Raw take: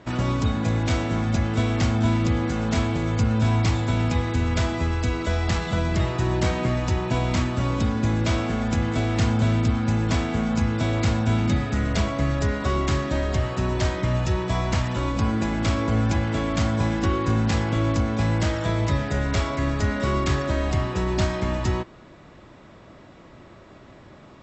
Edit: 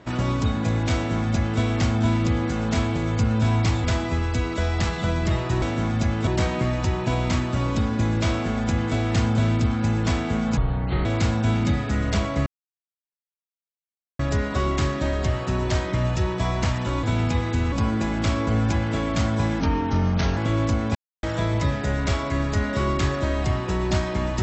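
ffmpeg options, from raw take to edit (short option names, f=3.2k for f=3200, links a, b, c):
-filter_complex "[0:a]asplit=13[a][b][c][d][e][f][g][h][i][j][k][l][m];[a]atrim=end=3.842[n];[b]atrim=start=4.528:end=6.312[o];[c]atrim=start=0.948:end=1.602[p];[d]atrim=start=6.308:end=10.614[q];[e]atrim=start=10.61:end=10.88,asetpts=PTS-STARTPTS,asetrate=24696,aresample=44100,atrim=end_sample=21262,asetpts=PTS-STARTPTS[r];[f]atrim=start=10.876:end=12.29,asetpts=PTS-STARTPTS,afade=t=out:st=1.41:d=0.004:c=hsin,apad=pad_dur=1.73[s];[g]atrim=start=12.29:end=15.132,asetpts=PTS-STARTPTS,afade=t=in:d=0.004:c=hsin[t];[h]atrim=start=3.838:end=4.532[u];[i]atrim=start=15.128:end=17.014[v];[j]atrim=start=17.01:end=17.64,asetpts=PTS-STARTPTS,asetrate=36162,aresample=44100[w];[k]atrim=start=17.636:end=18.22,asetpts=PTS-STARTPTS,afade=t=out:st=0.58:d=0.004:c=hsin[x];[l]atrim=start=18.22:end=18.5,asetpts=PTS-STARTPTS,volume=0[y];[m]atrim=start=18.5,asetpts=PTS-STARTPTS,afade=t=in:d=0.004:c=hsin[z];[n][o]acrossfade=d=0.004:c1=hsin:c2=hsin[aa];[aa][p]acrossfade=d=0.004:c1=hsin:c2=hsin[ab];[ab][q]acrossfade=d=0.004:c1=hsin:c2=hsin[ac];[ac][r]acrossfade=d=0.004:c1=hsin:c2=hsin[ad];[s][t]concat=n=2:v=0:a=1[ae];[ad][ae]acrossfade=d=0.004:c1=hsin:c2=hsin[af];[af][u]acrossfade=d=0.004:c1=hsin:c2=hsin[ag];[ag][v]acrossfade=d=0.004:c1=hsin:c2=hsin[ah];[ah][w]acrossfade=d=0.004:c1=hsin:c2=hsin[ai];[x][y][z]concat=n=3:v=0:a=1[aj];[ai][aj]acrossfade=d=0.004:c1=hsin:c2=hsin"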